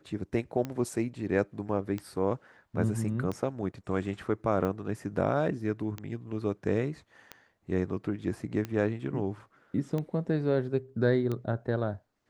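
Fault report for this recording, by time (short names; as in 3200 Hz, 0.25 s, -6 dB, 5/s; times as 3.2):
tick 45 rpm -21 dBFS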